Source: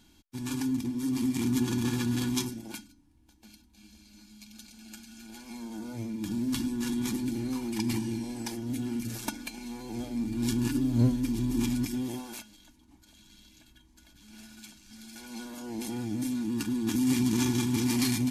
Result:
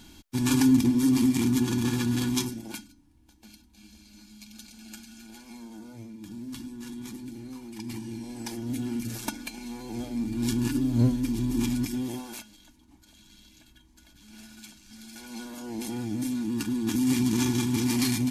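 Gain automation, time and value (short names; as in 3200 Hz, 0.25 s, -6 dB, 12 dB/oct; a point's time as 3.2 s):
0.9 s +10 dB
1.59 s +2.5 dB
4.98 s +2.5 dB
6.2 s -8.5 dB
7.77 s -8.5 dB
8.62 s +1.5 dB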